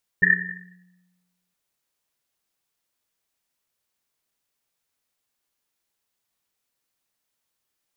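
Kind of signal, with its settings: Risset drum length 1.32 s, pitch 180 Hz, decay 1.37 s, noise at 1.8 kHz, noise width 160 Hz, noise 80%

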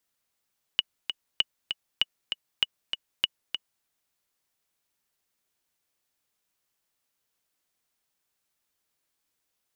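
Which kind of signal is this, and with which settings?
metronome 196 bpm, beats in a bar 2, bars 5, 2.93 kHz, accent 7 dB -8.5 dBFS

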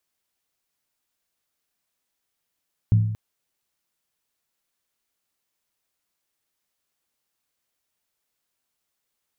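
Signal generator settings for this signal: skin hit length 0.23 s, lowest mode 108 Hz, decay 0.85 s, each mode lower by 11 dB, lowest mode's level -11.5 dB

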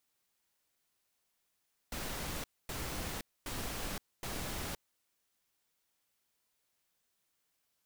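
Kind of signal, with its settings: noise bursts pink, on 0.52 s, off 0.25 s, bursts 4, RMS -39.5 dBFS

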